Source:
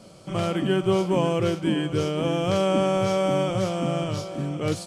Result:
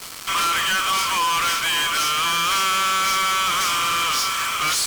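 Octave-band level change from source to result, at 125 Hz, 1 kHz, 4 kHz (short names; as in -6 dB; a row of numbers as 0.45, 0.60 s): -16.5, +10.5, +14.5 dB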